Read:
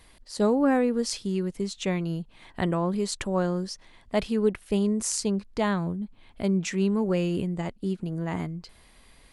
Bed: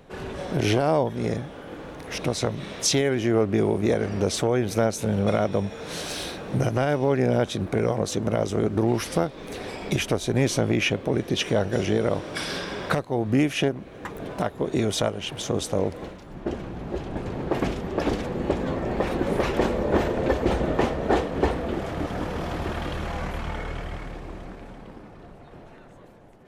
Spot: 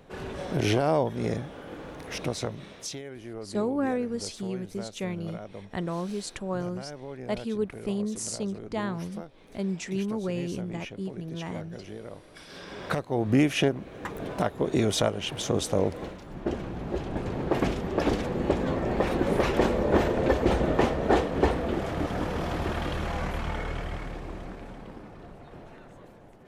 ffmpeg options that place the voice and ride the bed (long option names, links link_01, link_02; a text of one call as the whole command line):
ffmpeg -i stem1.wav -i stem2.wav -filter_complex "[0:a]adelay=3150,volume=-5.5dB[link_01];[1:a]volume=15dB,afade=type=out:start_time=2.03:duration=0.96:silence=0.16788,afade=type=in:start_time=12.47:duration=0.84:silence=0.133352[link_02];[link_01][link_02]amix=inputs=2:normalize=0" out.wav